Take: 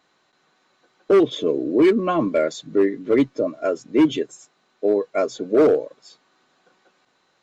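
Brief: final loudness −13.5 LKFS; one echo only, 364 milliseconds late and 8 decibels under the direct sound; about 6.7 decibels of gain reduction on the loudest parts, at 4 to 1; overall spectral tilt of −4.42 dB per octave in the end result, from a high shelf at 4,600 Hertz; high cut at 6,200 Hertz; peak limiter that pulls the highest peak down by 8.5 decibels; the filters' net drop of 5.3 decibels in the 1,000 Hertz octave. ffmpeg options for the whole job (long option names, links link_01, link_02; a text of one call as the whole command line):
ffmpeg -i in.wav -af "lowpass=6200,equalizer=frequency=1000:width_type=o:gain=-8,highshelf=frequency=4600:gain=4.5,acompressor=threshold=-20dB:ratio=4,alimiter=limit=-21dB:level=0:latency=1,aecho=1:1:364:0.398,volume=16.5dB" out.wav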